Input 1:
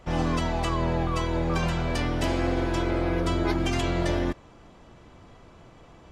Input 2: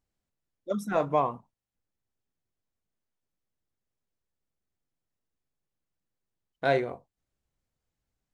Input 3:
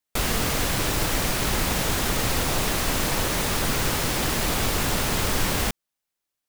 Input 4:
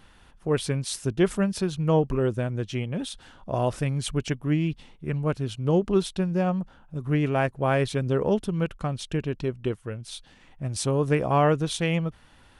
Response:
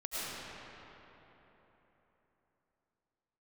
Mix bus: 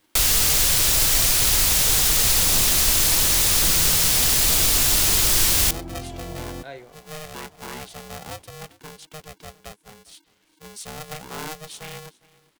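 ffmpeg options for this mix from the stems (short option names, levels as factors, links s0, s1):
-filter_complex "[0:a]equalizer=f=740:t=o:w=0.45:g=12,acrossover=split=390[s0][s1];[s1]acompressor=threshold=0.0178:ratio=6[s2];[s0][s2]amix=inputs=2:normalize=0,adelay=2300,volume=0.376[s3];[1:a]volume=0.178[s4];[2:a]equalizer=f=220:t=o:w=2:g=-10.5,volume=1.33[s5];[3:a]aeval=exprs='val(0)*sgn(sin(2*PI*310*n/s))':c=same,volume=0.188,asplit=2[s6][s7];[s7]volume=0.0794,aecho=0:1:405:1[s8];[s3][s4][s5][s6][s8]amix=inputs=5:normalize=0,highshelf=f=2800:g=9.5,acrossover=split=400|3000[s9][s10][s11];[s10]acompressor=threshold=0.0316:ratio=6[s12];[s9][s12][s11]amix=inputs=3:normalize=0"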